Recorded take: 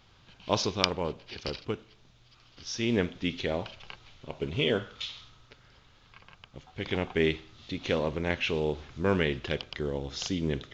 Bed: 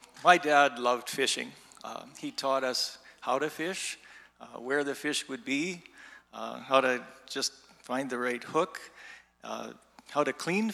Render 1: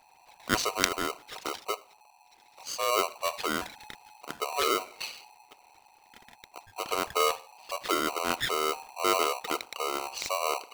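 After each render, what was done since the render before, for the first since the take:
spectral envelope exaggerated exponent 2
ring modulator with a square carrier 850 Hz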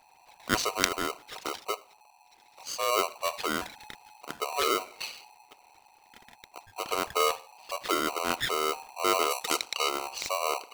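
0:09.30–0:09.88: parametric band 12,000 Hz → 3,500 Hz +10 dB 2.3 octaves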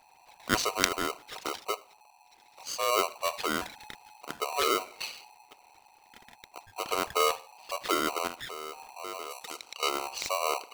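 0:08.27–0:09.83: downward compressor 2.5 to 1, threshold −42 dBFS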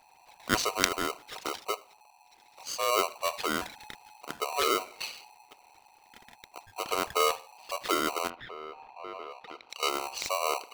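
0:08.30–0:09.70: high-frequency loss of the air 330 metres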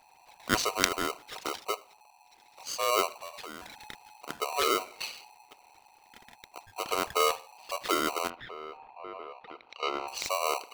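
0:03.20–0:03.75: downward compressor 5 to 1, threshold −40 dBFS
0:08.77–0:10.08: high-frequency loss of the air 230 metres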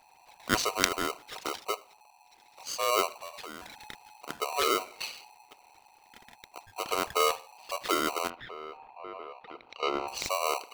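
0:09.54–0:10.30: low-shelf EQ 440 Hz +7.5 dB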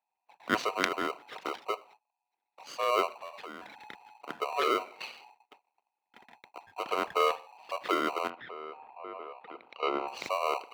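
noise gate −54 dBFS, range −27 dB
three-way crossover with the lows and the highs turned down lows −19 dB, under 150 Hz, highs −15 dB, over 3,300 Hz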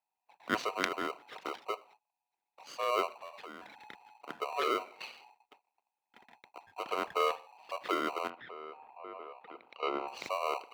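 level −3.5 dB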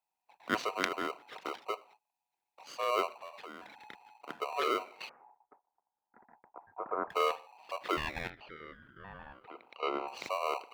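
0:05.09–0:07.10: Butterworth low-pass 1,700 Hz 48 dB per octave
0:07.96–0:09.44: ring modulation 1,500 Hz → 390 Hz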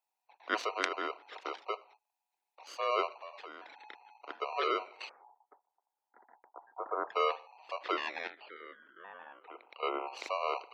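gate on every frequency bin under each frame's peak −30 dB strong
high-pass filter 330 Hz 24 dB per octave

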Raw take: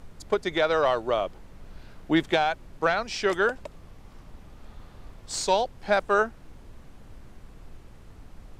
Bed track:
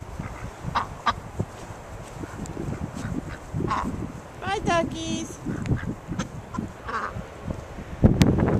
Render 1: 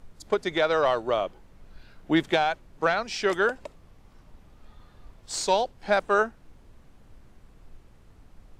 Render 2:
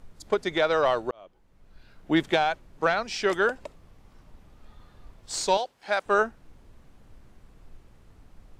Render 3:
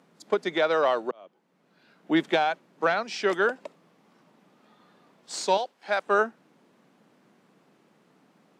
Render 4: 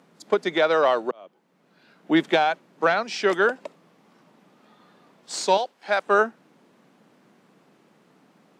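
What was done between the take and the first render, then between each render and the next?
noise reduction from a noise print 6 dB
0:01.11–0:02.20: fade in linear; 0:05.57–0:06.06: high-pass filter 850 Hz 6 dB per octave
Butterworth high-pass 170 Hz 36 dB per octave; high-shelf EQ 6,600 Hz −7 dB
level +3.5 dB

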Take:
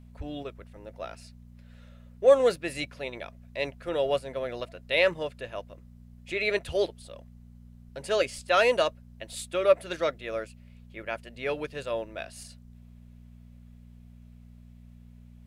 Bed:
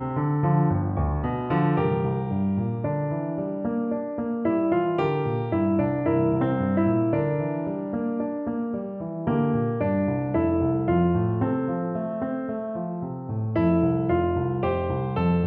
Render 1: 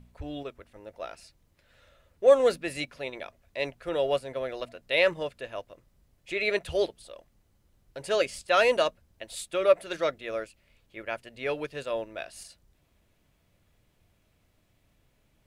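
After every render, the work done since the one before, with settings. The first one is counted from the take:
hum removal 60 Hz, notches 4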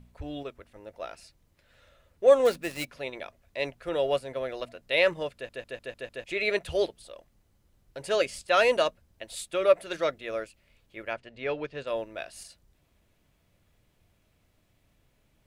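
0:02.45–0:02.88: gap after every zero crossing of 0.068 ms
0:05.34: stutter in place 0.15 s, 6 plays
0:11.13–0:11.87: high-frequency loss of the air 120 metres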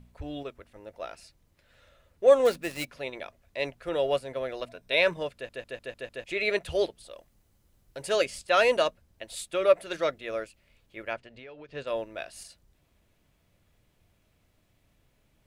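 0:04.69–0:05.17: EQ curve with evenly spaced ripples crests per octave 1.6, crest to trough 7 dB
0:07.11–0:08.24: high-shelf EQ 6,300 Hz +6 dB
0:11.17–0:11.69: downward compressor 8 to 1, threshold −43 dBFS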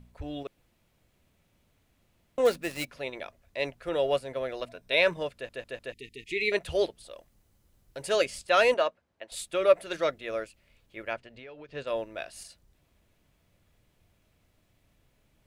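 0:00.47–0:02.38: fill with room tone
0:05.92–0:06.52: linear-phase brick-wall band-stop 460–1,800 Hz
0:08.74–0:09.32: resonant band-pass 990 Hz, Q 0.51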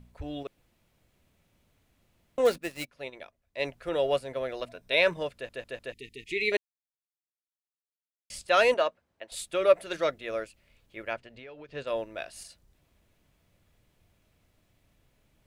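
0:02.58–0:03.64: expander for the loud parts, over −53 dBFS
0:06.57–0:08.30: silence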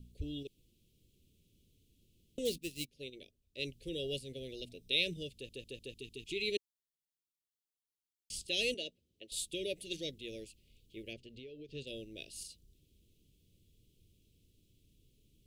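elliptic band-stop filter 420–3,000 Hz, stop band 80 dB
dynamic equaliser 470 Hz, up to −7 dB, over −46 dBFS, Q 0.78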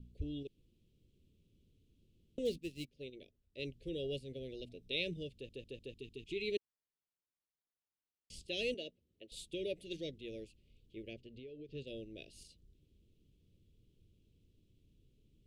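low-pass filter 1,700 Hz 6 dB per octave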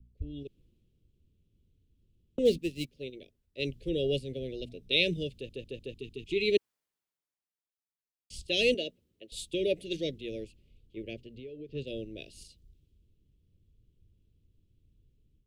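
automatic gain control gain up to 8.5 dB
multiband upward and downward expander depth 40%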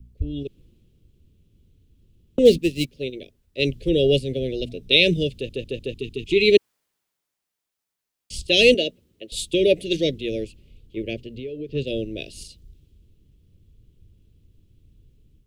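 level +11.5 dB
brickwall limiter −3 dBFS, peak gain reduction 2.5 dB

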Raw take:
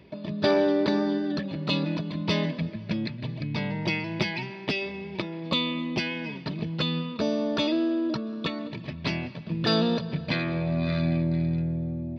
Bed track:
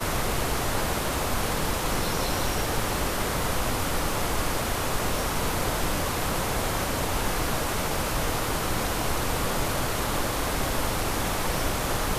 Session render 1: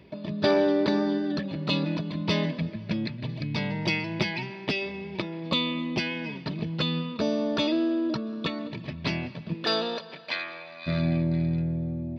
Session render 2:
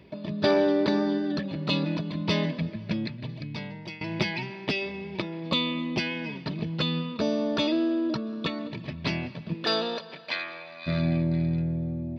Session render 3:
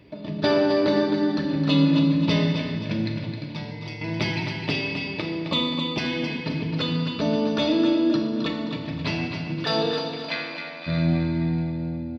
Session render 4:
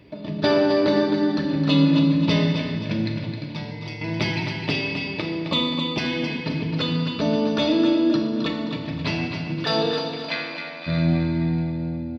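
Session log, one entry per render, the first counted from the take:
0:03.29–0:04.06: high-shelf EQ 4,800 Hz +7.5 dB; 0:09.53–0:10.86: high-pass filter 320 Hz → 1,400 Hz
0:02.91–0:04.01: fade out, to −17.5 dB
repeating echo 264 ms, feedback 41%, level −7.5 dB; feedback delay network reverb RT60 1.3 s, low-frequency decay 1.3×, high-frequency decay 1×, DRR 2 dB
level +1.5 dB

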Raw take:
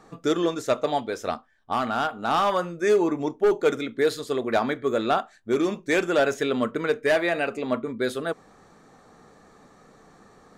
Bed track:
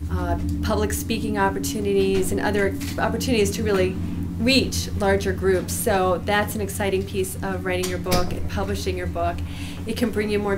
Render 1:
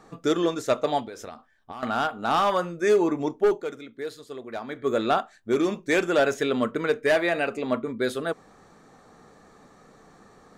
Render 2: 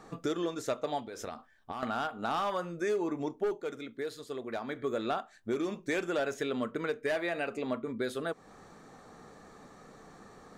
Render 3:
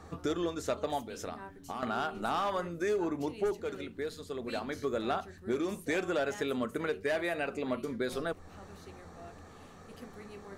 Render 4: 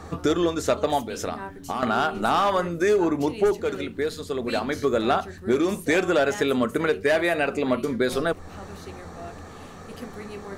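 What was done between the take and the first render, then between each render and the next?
0:01.04–0:01.83: downward compressor 12 to 1, threshold −34 dBFS; 0:03.45–0:04.89: duck −11.5 dB, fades 0.22 s
downward compressor 2.5 to 1, threshold −34 dBFS, peak gain reduction 11.5 dB
mix in bed track −26.5 dB
level +10.5 dB

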